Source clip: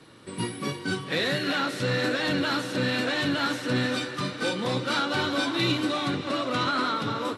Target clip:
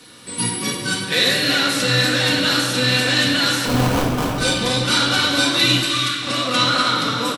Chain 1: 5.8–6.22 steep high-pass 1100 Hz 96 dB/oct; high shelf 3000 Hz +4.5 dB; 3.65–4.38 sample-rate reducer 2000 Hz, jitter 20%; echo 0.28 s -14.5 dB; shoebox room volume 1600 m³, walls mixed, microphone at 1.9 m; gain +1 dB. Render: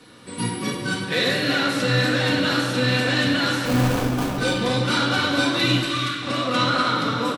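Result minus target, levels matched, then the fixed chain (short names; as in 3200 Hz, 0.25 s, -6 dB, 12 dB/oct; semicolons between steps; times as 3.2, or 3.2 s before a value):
8000 Hz band -6.0 dB
5.8–6.22 steep high-pass 1100 Hz 96 dB/oct; high shelf 3000 Hz +16.5 dB; 3.65–4.38 sample-rate reducer 2000 Hz, jitter 20%; echo 0.28 s -14.5 dB; shoebox room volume 1600 m³, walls mixed, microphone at 1.9 m; gain +1 dB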